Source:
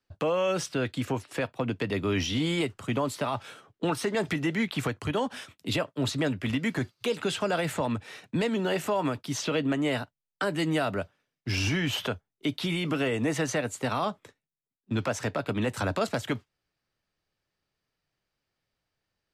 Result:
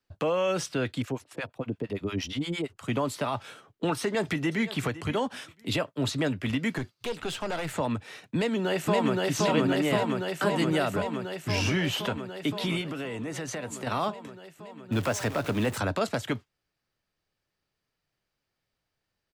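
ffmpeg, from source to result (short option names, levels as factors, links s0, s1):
-filter_complex "[0:a]asettb=1/sr,asplit=3[s0][s1][s2];[s0]atrim=end=1.024[s3];[s1]atrim=start=1.02:end=2.83,asetpts=PTS-STARTPTS,afade=t=in:d=0.004:c=qsin,afade=t=out:st=1.806:d=0.004:c=qsin,acrossover=split=670[s4][s5];[s4]aeval=exprs='val(0)*(1-1/2+1/2*cos(2*PI*8.7*n/s))':c=same[s6];[s5]aeval=exprs='val(0)*(1-1/2-1/2*cos(2*PI*8.7*n/s))':c=same[s7];[s6][s7]amix=inputs=2:normalize=0[s8];[s2]atrim=start=2.826[s9];[s3][s8]acrossfade=d=0.004:c1=hsin:c2=qsin[s10];[s10][s9]acrossfade=d=0.004:c1=qsin:c2=hsin,asplit=2[s11][s12];[s12]afade=t=in:st=4:d=0.01,afade=t=out:st=4.65:d=0.01,aecho=0:1:510|1020:0.16788|0.0251821[s13];[s11][s13]amix=inputs=2:normalize=0,asettb=1/sr,asplit=3[s14][s15][s16];[s14]atrim=end=6.784[s17];[s15]atrim=start=6.78:end=7.74,asetpts=PTS-STARTPTS,afade=t=in:d=0.004:c=qsin,afade=t=out:st=0.956:d=0.004:c=qsin,aeval=exprs='(tanh(20*val(0)+0.6)-tanh(0.6))/20':c=same[s18];[s16]atrim=start=7.736[s19];[s17][s18]acrossfade=d=0.004:c1=hsin:c2=qsin[s20];[s20][s19]acrossfade=d=0.004:c1=qsin:c2=hsin,asplit=2[s21][s22];[s22]afade=t=in:st=8.35:d=0.01,afade=t=out:st=9.27:d=0.01,aecho=0:1:520|1040|1560|2080|2600|3120|3640|4160|4680|5200|5720|6240:0.944061|0.755249|0.604199|0.483359|0.386687|0.30935|0.24748|0.197984|0.158387|0.12671|0.101368|0.0810942[s23];[s21][s23]amix=inputs=2:normalize=0,asettb=1/sr,asplit=3[s24][s25][s26];[s24]atrim=end=12.814[s27];[s25]atrim=start=12.81:end=13.87,asetpts=PTS-STARTPTS,afade=t=in:d=0.004:c=qsin,afade=t=out:st=1.056:d=0.004:c=qsin,acompressor=threshold=0.0282:ratio=6:attack=3.2:release=140:knee=1:detection=peak[s28];[s26]atrim=start=13.866[s29];[s27][s28]acrossfade=d=0.004:c1=hsin:c2=qsin[s30];[s30][s29]acrossfade=d=0.004:c1=qsin:c2=hsin,asettb=1/sr,asplit=3[s31][s32][s33];[s31]atrim=end=14.924[s34];[s32]atrim=start=14.92:end=15.78,asetpts=PTS-STARTPTS,afade=t=in:d=0.004:c=qsin,afade=t=out:st=0.856:d=0.004:c=qsin,aeval=exprs='val(0)+0.5*0.0178*sgn(val(0))':c=same[s35];[s33]atrim=start=15.776[s36];[s34][s35]acrossfade=d=0.004:c1=hsin:c2=qsin[s37];[s37][s36]acrossfade=d=0.004:c1=qsin:c2=hsin"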